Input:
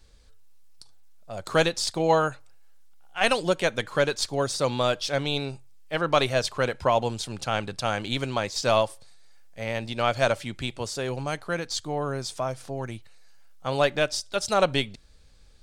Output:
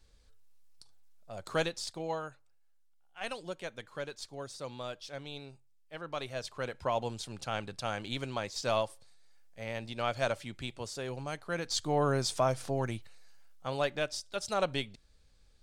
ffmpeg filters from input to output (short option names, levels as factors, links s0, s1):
-af "volume=3.16,afade=t=out:st=1.34:d=0.87:silence=0.354813,afade=t=in:st=6.19:d=0.89:silence=0.398107,afade=t=in:st=11.45:d=0.58:silence=0.334965,afade=t=out:st=12.66:d=1.13:silence=0.316228"